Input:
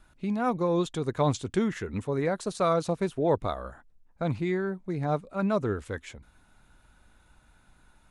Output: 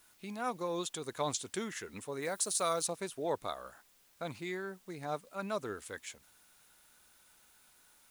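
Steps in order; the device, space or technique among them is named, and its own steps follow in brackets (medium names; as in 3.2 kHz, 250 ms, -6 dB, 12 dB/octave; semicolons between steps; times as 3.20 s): turntable without a phono preamp (RIAA curve recording; white noise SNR 27 dB); 2.22–2.87 s: treble shelf 7.4 kHz +12 dB; trim -7 dB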